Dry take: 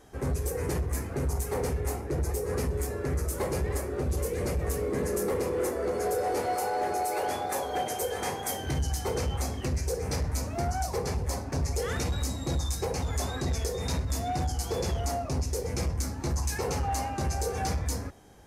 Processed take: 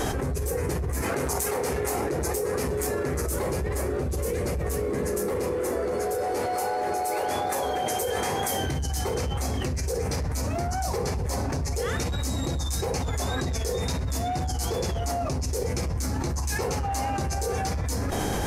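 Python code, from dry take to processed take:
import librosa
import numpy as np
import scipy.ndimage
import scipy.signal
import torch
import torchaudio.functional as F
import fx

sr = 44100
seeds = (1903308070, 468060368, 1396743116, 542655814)

y = fx.highpass(x, sr, hz=fx.line((1.01, 610.0), (3.26, 170.0)), slope=6, at=(1.01, 3.26), fade=0.02)
y = fx.env_flatten(y, sr, amount_pct=100)
y = y * librosa.db_to_amplitude(-2.0)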